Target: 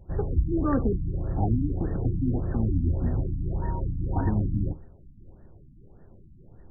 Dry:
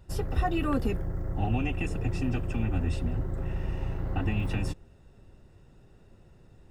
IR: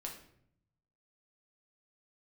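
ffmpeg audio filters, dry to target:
-filter_complex "[0:a]aexciter=amount=5.8:drive=7.6:freq=2.1k,asettb=1/sr,asplit=3[a][b][c];[a]atrim=end=3.624[d];[b]atrim=start=3.62:end=4.3,asetpts=PTS-STARTPTS,afade=t=in:d=0.004:c=qsin,afade=t=out:st=0.676:d=0.004:c=qsin,aeval=exprs='val(0)+0.0126*sin(2*PI*940*n/s)':c=same[e];[c]atrim=start=4.296[f];[d][e]acrossfade=d=0.004:c1=hsin:c2=qsin[g];[g][f]acrossfade=d=0.004:c1=qsin:c2=hsin,asplit=2[h][i];[1:a]atrim=start_sample=2205,atrim=end_sample=3969,lowpass=f=2.1k:w=0.5412,lowpass=f=2.1k:w=1.3066[j];[i][j]afir=irnorm=-1:irlink=0,volume=-6.5dB[k];[h][k]amix=inputs=2:normalize=0,afftfilt=real='re*lt(b*sr/1024,300*pow(1900/300,0.5+0.5*sin(2*PI*1.7*pts/sr)))':imag='im*lt(b*sr/1024,300*pow(1900/300,0.5+0.5*sin(2*PI*1.7*pts/sr)))':win_size=1024:overlap=0.75,volume=2dB"

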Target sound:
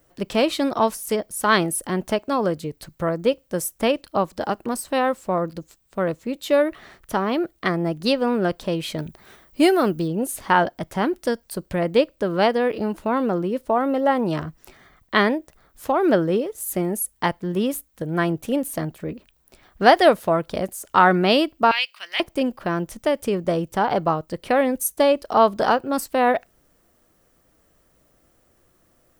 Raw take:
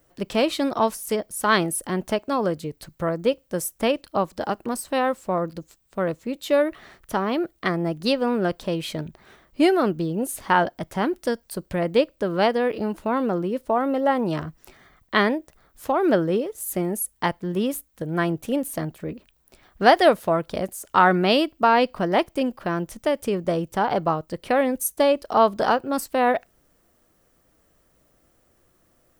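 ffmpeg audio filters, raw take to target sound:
-filter_complex "[0:a]asettb=1/sr,asplit=3[a][b][c];[a]atrim=end=8.984[d];[b]atrim=start=8.98:end=10.08,asetpts=PTS-STARTPTS,afade=t=in:d=0.004:c=qsin,afade=t=out:st=1.096:d=0.004:c=qsin,highshelf=f=7.2k:g=10.5[e];[c]atrim=start=10.076[f];[d][e]acrossfade=d=0.004:c1=hsin:c2=qsin[g];[g][f]acrossfade=d=0.004:c1=qsin:c2=hsin,asettb=1/sr,asplit=3[h][i][j];[h]atrim=end=21.714[k];[i]atrim=start=21.71:end=22.2,asetpts=PTS-STARTPTS,afade=t=in:d=0.004:c=qsin,afade=t=out:st=0.486:d=0.004:c=qsin,highpass=f=2.6k:t=q:w=2.3[l];[j]atrim=start=22.196[m];[k][l]acrossfade=d=0.004:c1=hsin:c2=qsin[n];[n][m]acrossfade=d=0.004:c1=qsin:c2=hsin,volume=1.5dB"

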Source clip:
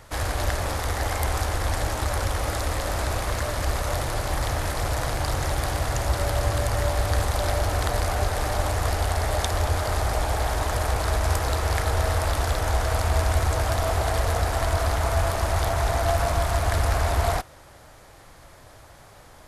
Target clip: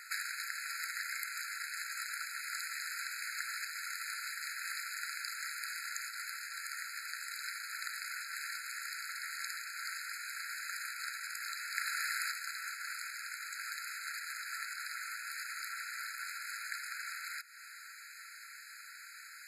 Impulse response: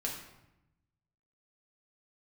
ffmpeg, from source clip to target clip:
-filter_complex "[0:a]asettb=1/sr,asplit=3[a][b][c];[a]atrim=end=11.714[d];[b]atrim=start=11.71:end=12.31,asetpts=PTS-STARTPTS,afade=t=in:d=0.004:c=qsin,afade=t=out:st=0.596:d=0.004:c=qsin,highpass=770[e];[c]atrim=start=12.306[f];[d][e]acrossfade=d=0.004:c1=hsin:c2=qsin[g];[g][f]acrossfade=d=0.004:c1=qsin:c2=hsin,acompressor=threshold=-34dB:ratio=5,afftfilt=real='re*eq(mod(floor(b*sr/1024/1300),2),1)':imag='im*eq(mod(floor(b*sr/1024/1300),2),1)':win_size=1024:overlap=0.75,volume=5.5dB"

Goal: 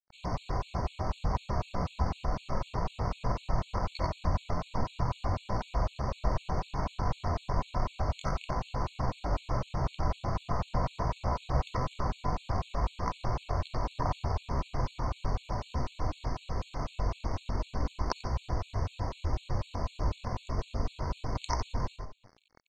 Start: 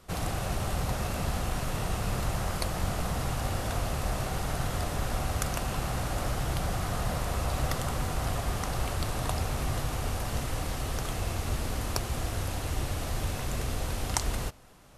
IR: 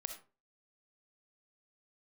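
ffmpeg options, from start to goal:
-filter_complex "[0:a]asplit=2[a][b];[b]adynamicsmooth=sensitivity=2.5:basefreq=660,volume=2.5dB[c];[a][c]amix=inputs=2:normalize=0,atempo=0.66,equalizer=f=1k:w=6:g=13[d];[1:a]atrim=start_sample=2205[e];[d][e]afir=irnorm=-1:irlink=0,aeval=exprs='sgn(val(0))*max(abs(val(0))-0.00708,0)':c=same,lowpass=f=5.3k:t=q:w=2.5,aecho=1:1:90:0.473,areverse,acompressor=mode=upward:threshold=-38dB:ratio=2.5,areverse,aemphasis=mode=reproduction:type=50fm,afftfilt=real='re*gt(sin(2*PI*4*pts/sr)*(1-2*mod(floor(b*sr/1024/2200),2)),0)':imag='im*gt(sin(2*PI*4*pts/sr)*(1-2*mod(floor(b*sr/1024/2200),2)),0)':win_size=1024:overlap=0.75,volume=-4dB"

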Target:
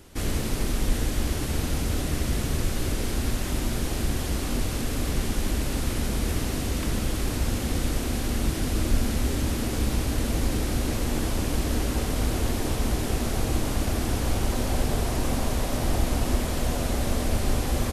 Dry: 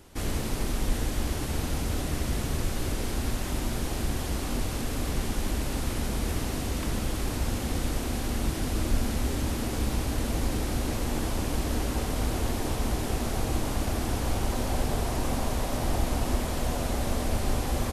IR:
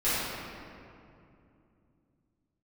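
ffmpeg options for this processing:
-af "equalizer=f=870:w=1.5:g=-3.5,volume=3dB"

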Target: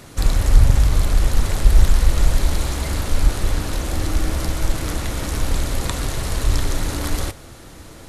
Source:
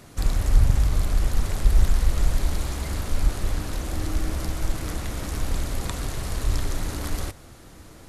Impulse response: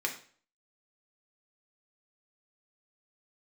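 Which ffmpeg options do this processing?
-filter_complex "[0:a]asoftclip=type=hard:threshold=-7dB,asplit=2[a][b];[1:a]atrim=start_sample=2205,asetrate=74970,aresample=44100[c];[b][c]afir=irnorm=-1:irlink=0,volume=-9.5dB[d];[a][d]amix=inputs=2:normalize=0,volume=5dB"

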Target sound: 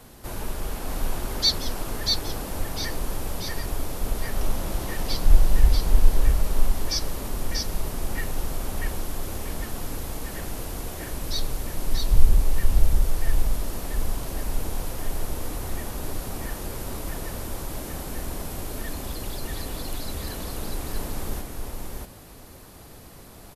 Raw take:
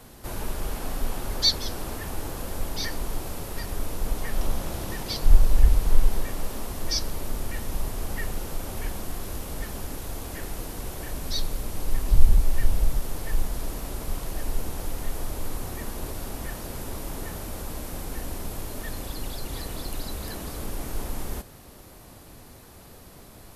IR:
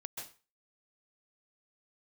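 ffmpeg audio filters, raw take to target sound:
-af "aecho=1:1:638:0.708"

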